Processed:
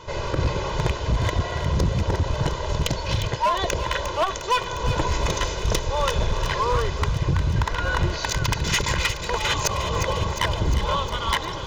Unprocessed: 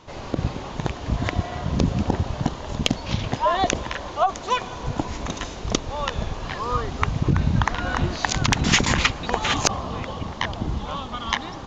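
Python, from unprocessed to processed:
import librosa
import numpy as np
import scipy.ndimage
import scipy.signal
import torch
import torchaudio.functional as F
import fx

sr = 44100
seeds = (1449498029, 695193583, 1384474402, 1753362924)

y = x + 0.79 * np.pad(x, (int(2.0 * sr / 1000.0), 0))[:len(x)]
y = fx.rider(y, sr, range_db=5, speed_s=0.5)
y = np.clip(y, -10.0 ** (-16.0 / 20.0), 10.0 ** (-16.0 / 20.0))
y = fx.echo_wet_highpass(y, sr, ms=355, feedback_pct=66, hz=1900.0, wet_db=-8.5)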